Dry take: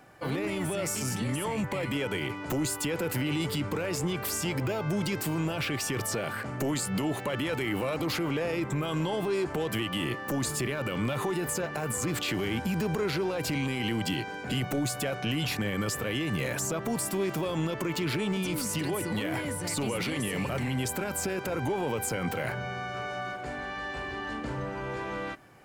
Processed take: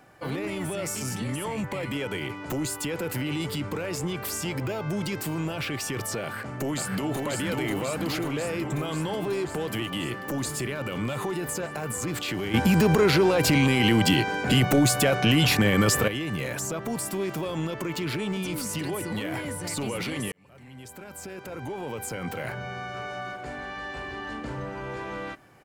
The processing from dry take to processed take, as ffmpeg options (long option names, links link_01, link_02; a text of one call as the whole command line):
ffmpeg -i in.wav -filter_complex "[0:a]asplit=2[link_01][link_02];[link_02]afade=type=in:start_time=6.23:duration=0.01,afade=type=out:start_time=7.2:duration=0.01,aecho=0:1:540|1080|1620|2160|2700|3240|3780|4320|4860|5400|5940|6480:0.707946|0.530959|0.39822|0.298665|0.223998|0.167999|0.125999|0.0944994|0.0708745|0.0531559|0.0398669|0.0299002[link_03];[link_01][link_03]amix=inputs=2:normalize=0,asplit=4[link_04][link_05][link_06][link_07];[link_04]atrim=end=12.542[link_08];[link_05]atrim=start=12.538:end=16.082,asetpts=PTS-STARTPTS,volume=9.5dB[link_09];[link_06]atrim=start=16.078:end=20.32,asetpts=PTS-STARTPTS,afade=type=out:start_time=4.238:duration=0.004:curve=hsin[link_10];[link_07]atrim=start=20.32,asetpts=PTS-STARTPTS,afade=type=in:duration=2.45[link_11];[link_08][link_09]acrossfade=duration=0.004:curve1=hsin:curve2=hsin[link_12];[link_10][link_11]concat=n=2:v=0:a=1[link_13];[link_12][link_13]acrossfade=duration=0.004:curve1=hsin:curve2=hsin" out.wav